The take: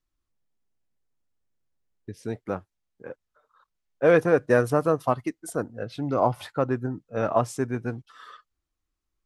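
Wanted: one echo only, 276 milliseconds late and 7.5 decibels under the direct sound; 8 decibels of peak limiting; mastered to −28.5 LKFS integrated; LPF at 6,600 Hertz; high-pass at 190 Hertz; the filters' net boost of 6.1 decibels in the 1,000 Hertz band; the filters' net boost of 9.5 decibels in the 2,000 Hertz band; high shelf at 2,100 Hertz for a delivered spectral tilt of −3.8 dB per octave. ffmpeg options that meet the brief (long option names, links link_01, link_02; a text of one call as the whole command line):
ffmpeg -i in.wav -af "highpass=190,lowpass=6600,equalizer=frequency=1000:width_type=o:gain=4.5,equalizer=frequency=2000:width_type=o:gain=8.5,highshelf=frequency=2100:gain=5,alimiter=limit=-10dB:level=0:latency=1,aecho=1:1:276:0.422,volume=-3.5dB" out.wav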